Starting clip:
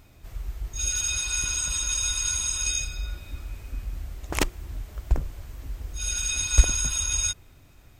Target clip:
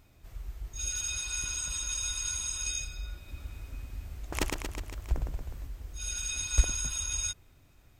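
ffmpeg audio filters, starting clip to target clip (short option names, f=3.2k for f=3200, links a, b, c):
-filter_complex "[0:a]asettb=1/sr,asplit=3[a][b][c];[a]atrim=end=3.174[d];[b]atrim=start=3.17:end=5.67,asetpts=PTS-STARTPTS,afade=t=in:d=0.004:c=qsin,afade=t=out:st=2.496:d=0.004:c=qsin,aecho=1:1:110|231|364.1|510.5|671.6:0.631|0.398|0.251|0.158|0.1,atrim=end_sample=110250[e];[c]atrim=start=5.666[f];[d][e]acrossfade=d=0.004:c1=hsin:c2=qsin[g];[g][f]acrossfade=d=0.004:c1=qsin:c2=hsin,volume=-7dB"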